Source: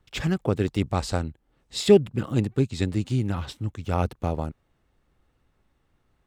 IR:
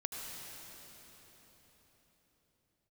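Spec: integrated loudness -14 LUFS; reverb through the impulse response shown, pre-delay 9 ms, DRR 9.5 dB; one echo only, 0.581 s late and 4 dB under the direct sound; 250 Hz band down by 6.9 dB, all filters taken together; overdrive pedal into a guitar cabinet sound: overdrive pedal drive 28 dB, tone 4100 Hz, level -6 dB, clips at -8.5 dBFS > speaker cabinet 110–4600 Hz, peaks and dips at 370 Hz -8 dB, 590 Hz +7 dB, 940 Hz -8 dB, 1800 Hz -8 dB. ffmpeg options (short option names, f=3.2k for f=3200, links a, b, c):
-filter_complex "[0:a]equalizer=f=250:t=o:g=-8,aecho=1:1:581:0.631,asplit=2[a][b];[1:a]atrim=start_sample=2205,adelay=9[c];[b][c]afir=irnorm=-1:irlink=0,volume=-10.5dB[d];[a][d]amix=inputs=2:normalize=0,asplit=2[e][f];[f]highpass=f=720:p=1,volume=28dB,asoftclip=type=tanh:threshold=-8.5dB[g];[e][g]amix=inputs=2:normalize=0,lowpass=f=4.1k:p=1,volume=-6dB,highpass=110,equalizer=f=370:t=q:w=4:g=-8,equalizer=f=590:t=q:w=4:g=7,equalizer=f=940:t=q:w=4:g=-8,equalizer=f=1.8k:t=q:w=4:g=-8,lowpass=f=4.6k:w=0.5412,lowpass=f=4.6k:w=1.3066,volume=6.5dB"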